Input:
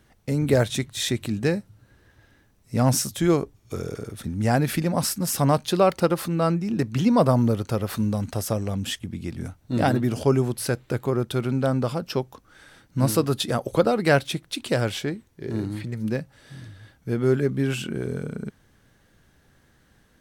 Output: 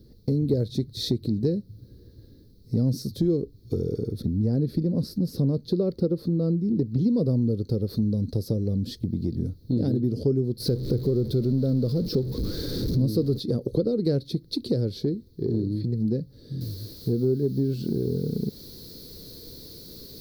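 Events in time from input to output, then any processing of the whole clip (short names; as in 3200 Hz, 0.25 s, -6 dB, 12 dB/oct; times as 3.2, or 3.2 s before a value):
4.22–7.01 high shelf 3000 Hz -8 dB
10.6–13.4 zero-crossing step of -25.5 dBFS
16.61 noise floor step -66 dB -41 dB
whole clip: EQ curve 470 Hz 0 dB, 740 Hz -26 dB, 2900 Hz -29 dB, 4300 Hz -2 dB, 7400 Hz -27 dB, 13000 Hz -14 dB; compressor 3:1, threshold -33 dBFS; gain +9 dB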